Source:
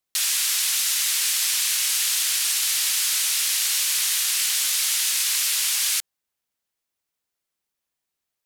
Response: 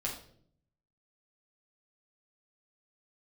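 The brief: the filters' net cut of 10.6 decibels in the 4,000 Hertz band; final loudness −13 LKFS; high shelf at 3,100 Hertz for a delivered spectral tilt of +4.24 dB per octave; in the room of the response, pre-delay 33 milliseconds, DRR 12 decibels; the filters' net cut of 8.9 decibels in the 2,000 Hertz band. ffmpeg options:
-filter_complex "[0:a]equalizer=frequency=2000:width_type=o:gain=-6.5,highshelf=frequency=3100:gain=-4.5,equalizer=frequency=4000:width_type=o:gain=-8.5,asplit=2[link_01][link_02];[1:a]atrim=start_sample=2205,adelay=33[link_03];[link_02][link_03]afir=irnorm=-1:irlink=0,volume=-15dB[link_04];[link_01][link_04]amix=inputs=2:normalize=0,volume=13dB"

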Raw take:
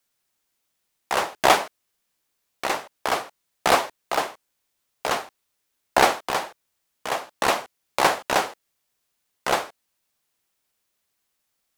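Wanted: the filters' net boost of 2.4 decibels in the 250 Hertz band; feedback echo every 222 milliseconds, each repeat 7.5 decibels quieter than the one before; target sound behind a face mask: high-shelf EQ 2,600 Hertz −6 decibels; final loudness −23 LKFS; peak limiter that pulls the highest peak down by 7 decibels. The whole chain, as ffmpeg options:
ffmpeg -i in.wav -af "equalizer=frequency=250:width_type=o:gain=3.5,alimiter=limit=-8.5dB:level=0:latency=1,highshelf=frequency=2600:gain=-6,aecho=1:1:222|444|666|888|1110:0.422|0.177|0.0744|0.0312|0.0131,volume=4.5dB" out.wav

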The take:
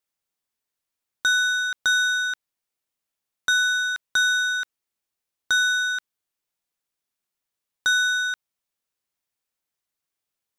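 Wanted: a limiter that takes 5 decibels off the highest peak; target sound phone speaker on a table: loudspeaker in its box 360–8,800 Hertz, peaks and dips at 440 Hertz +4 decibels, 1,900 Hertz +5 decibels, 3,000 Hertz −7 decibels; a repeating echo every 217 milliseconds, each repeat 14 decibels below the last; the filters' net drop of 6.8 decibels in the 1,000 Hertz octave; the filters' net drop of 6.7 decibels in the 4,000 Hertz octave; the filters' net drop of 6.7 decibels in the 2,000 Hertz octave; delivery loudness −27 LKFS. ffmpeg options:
ffmpeg -i in.wav -af "equalizer=frequency=1000:width_type=o:gain=-8,equalizer=frequency=2000:width_type=o:gain=-6.5,equalizer=frequency=4000:width_type=o:gain=-3.5,alimiter=limit=-22dB:level=0:latency=1,highpass=frequency=360:width=0.5412,highpass=frequency=360:width=1.3066,equalizer=frequency=440:width_type=q:width=4:gain=4,equalizer=frequency=1900:width_type=q:width=4:gain=5,equalizer=frequency=3000:width_type=q:width=4:gain=-7,lowpass=frequency=8800:width=0.5412,lowpass=frequency=8800:width=1.3066,aecho=1:1:217|434:0.2|0.0399,volume=3.5dB" out.wav

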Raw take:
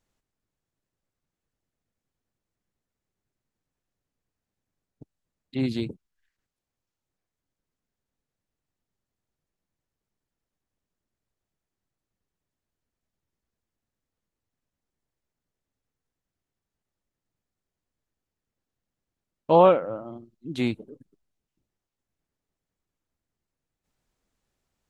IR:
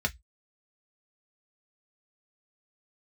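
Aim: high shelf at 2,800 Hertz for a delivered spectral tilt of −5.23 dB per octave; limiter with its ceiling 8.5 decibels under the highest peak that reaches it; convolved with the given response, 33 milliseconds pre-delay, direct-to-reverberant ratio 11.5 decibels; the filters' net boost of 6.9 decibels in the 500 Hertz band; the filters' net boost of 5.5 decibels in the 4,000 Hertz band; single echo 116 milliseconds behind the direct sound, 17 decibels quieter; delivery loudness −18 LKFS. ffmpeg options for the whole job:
-filter_complex "[0:a]equalizer=frequency=500:width_type=o:gain=7.5,highshelf=frequency=2800:gain=3.5,equalizer=frequency=4000:width_type=o:gain=4,alimiter=limit=-8.5dB:level=0:latency=1,aecho=1:1:116:0.141,asplit=2[link_01][link_02];[1:a]atrim=start_sample=2205,adelay=33[link_03];[link_02][link_03]afir=irnorm=-1:irlink=0,volume=-19dB[link_04];[link_01][link_04]amix=inputs=2:normalize=0,volume=5.5dB"

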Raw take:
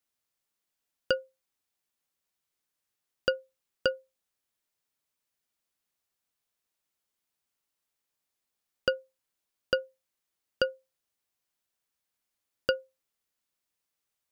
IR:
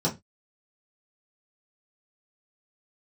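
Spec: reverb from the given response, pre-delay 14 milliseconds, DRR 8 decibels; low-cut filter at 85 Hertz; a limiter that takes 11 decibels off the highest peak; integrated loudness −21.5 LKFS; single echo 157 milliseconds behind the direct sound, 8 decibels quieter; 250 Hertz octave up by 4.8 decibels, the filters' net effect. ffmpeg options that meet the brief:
-filter_complex "[0:a]highpass=85,equalizer=frequency=250:width_type=o:gain=6.5,alimiter=limit=-21dB:level=0:latency=1,aecho=1:1:157:0.398,asplit=2[link_01][link_02];[1:a]atrim=start_sample=2205,adelay=14[link_03];[link_02][link_03]afir=irnorm=-1:irlink=0,volume=-18dB[link_04];[link_01][link_04]amix=inputs=2:normalize=0,volume=18.5dB"

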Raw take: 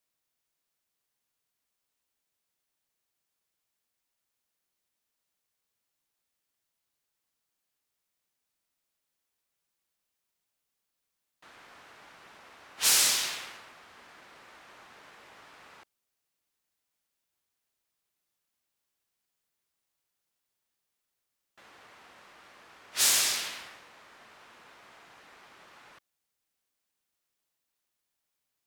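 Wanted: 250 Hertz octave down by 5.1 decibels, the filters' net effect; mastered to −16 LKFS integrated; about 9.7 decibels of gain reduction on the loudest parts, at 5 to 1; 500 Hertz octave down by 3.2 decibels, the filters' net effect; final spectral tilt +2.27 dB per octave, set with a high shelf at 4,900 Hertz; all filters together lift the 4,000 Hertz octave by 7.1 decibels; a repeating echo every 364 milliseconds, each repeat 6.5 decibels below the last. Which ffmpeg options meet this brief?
ffmpeg -i in.wav -af "equalizer=frequency=250:width_type=o:gain=-6,equalizer=frequency=500:width_type=o:gain=-3,equalizer=frequency=4000:width_type=o:gain=5.5,highshelf=frequency=4900:gain=6.5,acompressor=threshold=-24dB:ratio=5,aecho=1:1:364|728|1092|1456|1820|2184:0.473|0.222|0.105|0.0491|0.0231|0.0109,volume=12.5dB" out.wav

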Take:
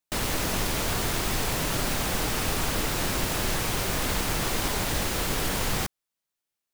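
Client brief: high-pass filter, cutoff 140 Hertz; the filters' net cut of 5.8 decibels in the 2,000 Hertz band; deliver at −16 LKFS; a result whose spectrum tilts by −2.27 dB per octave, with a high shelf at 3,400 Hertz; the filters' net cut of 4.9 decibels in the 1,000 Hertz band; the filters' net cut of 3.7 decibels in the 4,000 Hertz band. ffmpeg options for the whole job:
ffmpeg -i in.wav -af "highpass=140,equalizer=frequency=1000:width_type=o:gain=-5,equalizer=frequency=2000:width_type=o:gain=-5.5,highshelf=frequency=3400:gain=3.5,equalizer=frequency=4000:width_type=o:gain=-5.5,volume=11.5dB" out.wav

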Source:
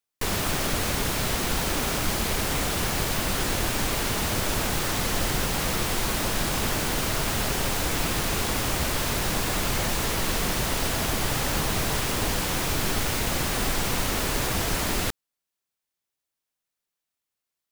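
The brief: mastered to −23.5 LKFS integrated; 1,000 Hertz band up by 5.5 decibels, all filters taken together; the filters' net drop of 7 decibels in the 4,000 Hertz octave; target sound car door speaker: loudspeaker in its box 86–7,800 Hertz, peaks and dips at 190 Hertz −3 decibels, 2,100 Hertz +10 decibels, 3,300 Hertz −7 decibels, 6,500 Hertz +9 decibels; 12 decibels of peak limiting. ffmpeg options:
ffmpeg -i in.wav -af "equalizer=frequency=1000:width_type=o:gain=7,equalizer=frequency=4000:width_type=o:gain=-8.5,alimiter=limit=-23.5dB:level=0:latency=1,highpass=86,equalizer=frequency=190:width_type=q:width=4:gain=-3,equalizer=frequency=2100:width_type=q:width=4:gain=10,equalizer=frequency=3300:width_type=q:width=4:gain=-7,equalizer=frequency=6500:width_type=q:width=4:gain=9,lowpass=frequency=7800:width=0.5412,lowpass=frequency=7800:width=1.3066,volume=8.5dB" out.wav

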